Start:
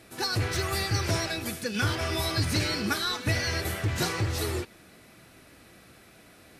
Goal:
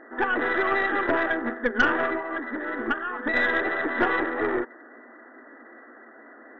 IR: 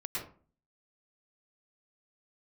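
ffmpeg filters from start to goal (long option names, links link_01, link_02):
-filter_complex "[0:a]crystalizer=i=4.5:c=0,asettb=1/sr,asplit=3[link_01][link_02][link_03];[link_01]atrim=end=2.044[link_04];[link_02]atrim=start=2.04:end=3.34,asetpts=PTS-STARTPTS,afade=type=in:duration=0.004:curve=qsin,afade=type=out:start_time=1.296:duration=0.004:curve=qsin,acompressor=threshold=-24dB:ratio=12[link_05];[link_03]atrim=start=3.336[link_06];[link_04][link_05]acrossfade=duration=0.004:curve1=hsin:curve2=qsin[link_07];[link_07][link_06]acrossfade=duration=0.004:curve1=qsin:curve2=hsin,afftfilt=real='re*between(b*sr/4096,220,2000)':imag='im*between(b*sr/4096,220,2000)':win_size=4096:overlap=0.75,aeval=exprs='0.188*(cos(1*acos(clip(val(0)/0.188,-1,1)))-cos(1*PI/2))+0.0237*(cos(4*acos(clip(val(0)/0.188,-1,1)))-cos(4*PI/2))':channel_layout=same,volume=7dB"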